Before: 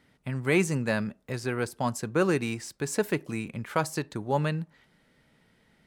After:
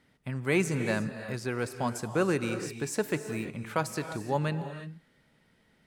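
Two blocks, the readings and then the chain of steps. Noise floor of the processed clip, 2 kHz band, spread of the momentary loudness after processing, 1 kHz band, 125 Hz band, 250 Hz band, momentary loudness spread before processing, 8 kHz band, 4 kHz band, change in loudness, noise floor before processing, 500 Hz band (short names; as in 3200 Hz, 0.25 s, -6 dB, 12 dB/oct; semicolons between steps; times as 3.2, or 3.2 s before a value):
-67 dBFS, -2.0 dB, 8 LU, -2.0 dB, -2.0 dB, -2.0 dB, 10 LU, -2.0 dB, -2.0 dB, -2.0 dB, -66 dBFS, -2.0 dB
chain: non-linear reverb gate 0.37 s rising, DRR 9 dB; gain -2.5 dB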